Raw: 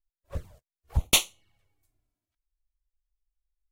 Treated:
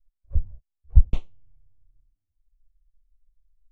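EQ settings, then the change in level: air absorption 54 m; RIAA curve playback; tilt -3 dB/oct; -16.5 dB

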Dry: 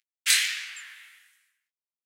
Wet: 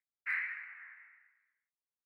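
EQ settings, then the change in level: elliptic low-pass 2100 Hz, stop band 40 dB; -5.0 dB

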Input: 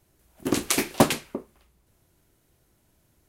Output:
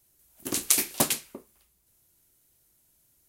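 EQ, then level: high shelf 2100 Hz +7.5 dB; high shelf 6100 Hz +11.5 dB; -10.5 dB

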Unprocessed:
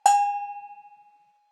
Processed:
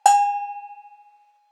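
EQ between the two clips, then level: HPF 420 Hz 24 dB/oct; +3.5 dB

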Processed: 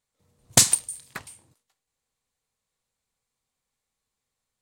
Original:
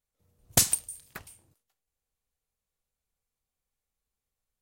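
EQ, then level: graphic EQ 125/250/500/1000/2000/4000/8000 Hz +9/+8/+6/+10/+8/+9/+11 dB; -5.0 dB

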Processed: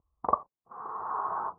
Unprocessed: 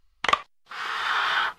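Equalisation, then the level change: HPF 73 Hz; Chebyshev low-pass 1100 Hz, order 5; notch 550 Hz, Q 18; 0.0 dB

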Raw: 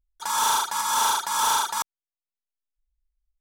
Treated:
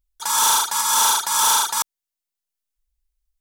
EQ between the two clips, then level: high shelf 3300 Hz +8.5 dB; +1.5 dB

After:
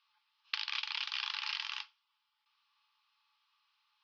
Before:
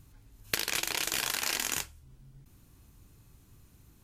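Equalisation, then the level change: rippled Chebyshev high-pass 830 Hz, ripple 9 dB; elliptic low-pass 5100 Hz, stop band 40 dB; 0.0 dB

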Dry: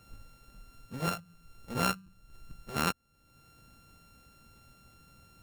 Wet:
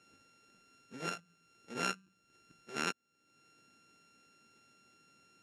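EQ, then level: speaker cabinet 370–8700 Hz, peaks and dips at 540 Hz -9 dB, 1100 Hz -3 dB, 1900 Hz -3 dB, 3000 Hz -4 dB, 4300 Hz -9 dB, 8500 Hz -10 dB; band shelf 940 Hz -8 dB 1.2 oct; +1.0 dB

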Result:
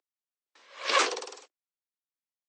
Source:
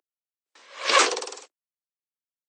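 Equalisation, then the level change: BPF 150–6800 Hz; -5.5 dB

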